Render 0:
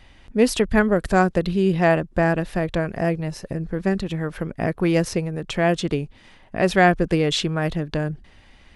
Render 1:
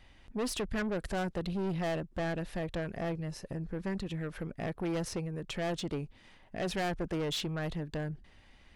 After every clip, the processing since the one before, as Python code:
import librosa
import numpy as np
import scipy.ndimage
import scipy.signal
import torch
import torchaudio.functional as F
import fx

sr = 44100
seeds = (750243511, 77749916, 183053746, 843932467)

y = 10.0 ** (-21.0 / 20.0) * np.tanh(x / 10.0 ** (-21.0 / 20.0))
y = y * librosa.db_to_amplitude(-8.5)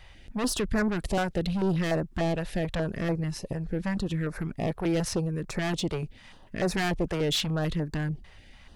y = fx.filter_held_notch(x, sr, hz=6.8, low_hz=260.0, high_hz=3100.0)
y = y * librosa.db_to_amplitude(8.0)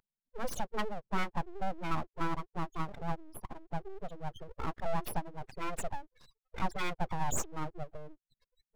y = fx.spec_gate(x, sr, threshold_db=-10, keep='strong')
y = scipy.signal.sosfilt(scipy.signal.butter(4, 260.0, 'highpass', fs=sr, output='sos'), y)
y = np.abs(y)